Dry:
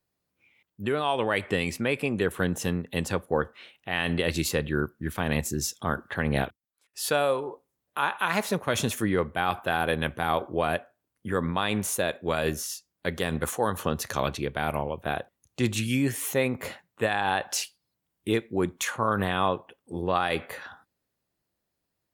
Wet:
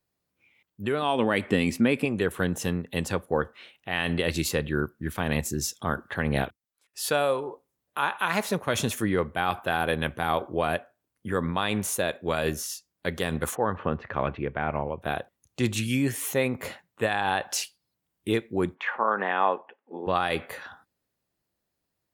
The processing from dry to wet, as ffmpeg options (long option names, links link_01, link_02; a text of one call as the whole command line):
ffmpeg -i in.wav -filter_complex "[0:a]asettb=1/sr,asplit=3[link_01][link_02][link_03];[link_01]atrim=end=1.024[link_04];[link_02]atrim=start=1.02:end=2.05,asetpts=PTS-STARTPTS,afade=type=in:duration=0.004:curve=qsin,afade=type=out:start_time=1.026:duration=0.004:curve=qsin,equalizer=frequency=240:width_type=o:width=0.77:gain=10[link_05];[link_03]atrim=start=2.046[link_06];[link_04][link_05]acrossfade=duration=0.004:curve1=hsin:curve2=qsin[link_07];[link_07][link_06]acrossfade=duration=0.004:curve1=qsin:curve2=hsin,asplit=3[link_08][link_09][link_10];[link_08]afade=type=out:start_time=13.54:duration=0.02[link_11];[link_09]lowpass=frequency=2400:width=0.5412,lowpass=frequency=2400:width=1.3066,afade=type=in:start_time=13.54:duration=0.02,afade=type=out:start_time=15.01:duration=0.02[link_12];[link_10]afade=type=in:start_time=15.01:duration=0.02[link_13];[link_11][link_12][link_13]amix=inputs=3:normalize=0,asplit=3[link_14][link_15][link_16];[link_14]afade=type=out:start_time=18.74:duration=0.02[link_17];[link_15]highpass=frequency=250:width=0.5412,highpass=frequency=250:width=1.3066,equalizer=frequency=310:width_type=q:width=4:gain=-6,equalizer=frequency=840:width_type=q:width=4:gain=6,equalizer=frequency=1800:width_type=q:width=4:gain=5,lowpass=frequency=2700:width=0.5412,lowpass=frequency=2700:width=1.3066,afade=type=in:start_time=18.74:duration=0.02,afade=type=out:start_time=20.06:duration=0.02[link_18];[link_16]afade=type=in:start_time=20.06:duration=0.02[link_19];[link_17][link_18][link_19]amix=inputs=3:normalize=0" out.wav